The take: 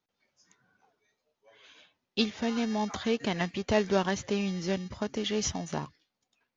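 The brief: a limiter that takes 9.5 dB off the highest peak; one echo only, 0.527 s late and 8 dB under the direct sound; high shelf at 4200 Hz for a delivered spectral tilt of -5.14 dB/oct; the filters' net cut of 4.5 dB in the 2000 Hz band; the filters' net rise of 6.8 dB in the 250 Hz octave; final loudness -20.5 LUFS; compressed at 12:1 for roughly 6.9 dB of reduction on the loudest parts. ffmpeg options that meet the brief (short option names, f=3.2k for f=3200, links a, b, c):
-af "equalizer=f=250:t=o:g=8.5,equalizer=f=2k:t=o:g=-7.5,highshelf=f=4.2k:g=6.5,acompressor=threshold=-23dB:ratio=12,alimiter=limit=-22dB:level=0:latency=1,aecho=1:1:527:0.398,volume=10.5dB"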